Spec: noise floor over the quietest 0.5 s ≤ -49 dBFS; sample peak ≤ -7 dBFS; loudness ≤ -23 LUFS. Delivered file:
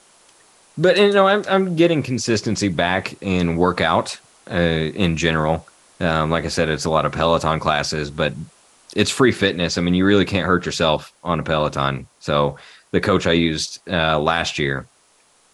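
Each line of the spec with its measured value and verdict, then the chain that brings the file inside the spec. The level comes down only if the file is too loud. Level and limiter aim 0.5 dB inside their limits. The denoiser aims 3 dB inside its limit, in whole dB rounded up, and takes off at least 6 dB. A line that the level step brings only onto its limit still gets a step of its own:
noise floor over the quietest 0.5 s -57 dBFS: pass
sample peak -3.5 dBFS: fail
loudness -19.0 LUFS: fail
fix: trim -4.5 dB

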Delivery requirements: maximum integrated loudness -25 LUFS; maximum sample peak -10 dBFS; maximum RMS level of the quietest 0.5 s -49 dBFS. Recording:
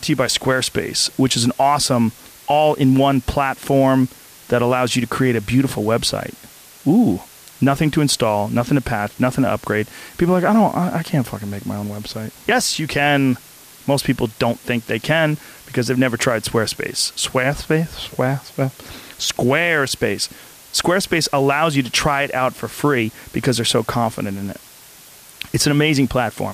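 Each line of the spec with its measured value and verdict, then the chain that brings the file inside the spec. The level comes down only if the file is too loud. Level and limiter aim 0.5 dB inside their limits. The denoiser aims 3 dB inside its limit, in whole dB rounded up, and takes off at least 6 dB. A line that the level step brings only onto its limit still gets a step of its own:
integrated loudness -18.5 LUFS: fail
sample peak -5.5 dBFS: fail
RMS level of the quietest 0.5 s -43 dBFS: fail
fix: trim -7 dB

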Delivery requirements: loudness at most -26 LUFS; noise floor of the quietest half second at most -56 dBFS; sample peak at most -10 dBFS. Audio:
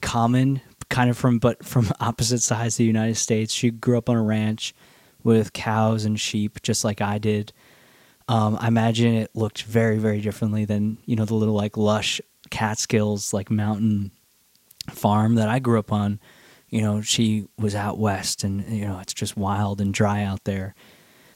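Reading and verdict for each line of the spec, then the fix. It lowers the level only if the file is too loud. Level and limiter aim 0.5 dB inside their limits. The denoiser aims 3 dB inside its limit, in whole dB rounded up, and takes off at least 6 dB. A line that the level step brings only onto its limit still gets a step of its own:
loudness -23.0 LUFS: fail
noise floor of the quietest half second -61 dBFS: pass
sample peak -5.5 dBFS: fail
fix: trim -3.5 dB; peak limiter -10.5 dBFS

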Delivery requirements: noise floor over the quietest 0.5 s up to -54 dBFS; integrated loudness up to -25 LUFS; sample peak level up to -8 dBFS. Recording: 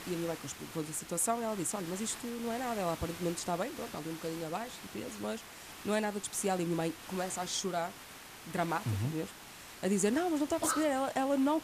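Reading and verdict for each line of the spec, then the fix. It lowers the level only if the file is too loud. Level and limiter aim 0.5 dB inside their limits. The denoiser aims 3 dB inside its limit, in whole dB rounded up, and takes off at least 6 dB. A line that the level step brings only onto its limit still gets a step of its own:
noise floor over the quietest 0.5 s -50 dBFS: fail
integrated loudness -35.0 LUFS: pass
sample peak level -18.0 dBFS: pass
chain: noise reduction 7 dB, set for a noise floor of -50 dBFS

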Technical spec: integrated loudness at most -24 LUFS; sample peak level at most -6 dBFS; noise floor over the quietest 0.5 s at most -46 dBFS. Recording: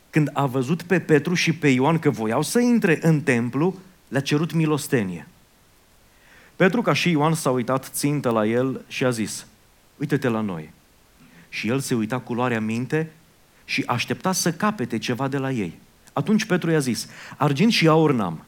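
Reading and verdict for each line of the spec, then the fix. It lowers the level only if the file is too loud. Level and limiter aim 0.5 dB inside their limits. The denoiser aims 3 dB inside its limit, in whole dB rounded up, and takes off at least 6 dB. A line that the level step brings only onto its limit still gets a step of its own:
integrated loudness -22.0 LUFS: fail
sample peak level -5.0 dBFS: fail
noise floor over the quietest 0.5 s -56 dBFS: pass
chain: trim -2.5 dB

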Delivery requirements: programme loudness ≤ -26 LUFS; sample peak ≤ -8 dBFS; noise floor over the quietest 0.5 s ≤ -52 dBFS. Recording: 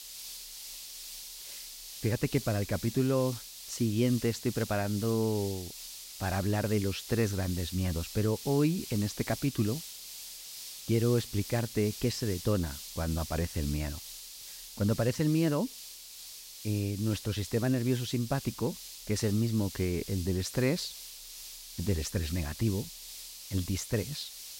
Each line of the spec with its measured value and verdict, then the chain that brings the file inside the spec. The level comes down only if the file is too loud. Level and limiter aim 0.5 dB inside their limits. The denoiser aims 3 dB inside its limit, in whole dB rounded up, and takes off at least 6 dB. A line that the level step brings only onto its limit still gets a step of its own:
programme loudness -32.0 LUFS: pass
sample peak -14.5 dBFS: pass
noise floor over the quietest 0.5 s -47 dBFS: fail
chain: noise reduction 8 dB, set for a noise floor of -47 dBFS

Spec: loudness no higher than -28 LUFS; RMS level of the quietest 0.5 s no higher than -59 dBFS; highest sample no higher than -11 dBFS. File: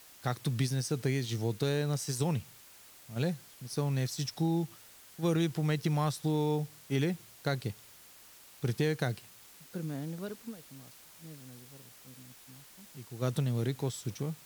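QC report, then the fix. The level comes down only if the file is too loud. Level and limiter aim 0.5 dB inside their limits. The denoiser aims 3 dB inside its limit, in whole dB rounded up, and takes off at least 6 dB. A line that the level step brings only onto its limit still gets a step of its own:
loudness -33.5 LUFS: pass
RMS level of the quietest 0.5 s -55 dBFS: fail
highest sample -16.0 dBFS: pass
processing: noise reduction 7 dB, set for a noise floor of -55 dBFS

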